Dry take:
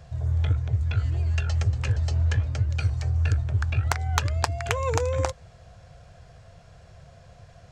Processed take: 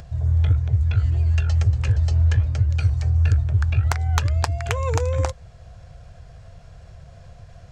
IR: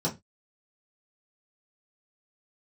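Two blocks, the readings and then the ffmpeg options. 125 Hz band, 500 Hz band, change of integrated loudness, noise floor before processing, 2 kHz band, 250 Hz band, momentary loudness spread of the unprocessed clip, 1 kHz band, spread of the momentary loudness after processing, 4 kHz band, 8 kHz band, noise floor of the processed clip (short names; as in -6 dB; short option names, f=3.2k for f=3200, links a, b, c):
+5.0 dB, +0.5 dB, +5.0 dB, -51 dBFS, 0.0 dB, +2.5 dB, 3 LU, 0.0 dB, 5 LU, 0.0 dB, 0.0 dB, -45 dBFS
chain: -af "lowshelf=f=84:g=11,acompressor=mode=upward:threshold=-38dB:ratio=2.5"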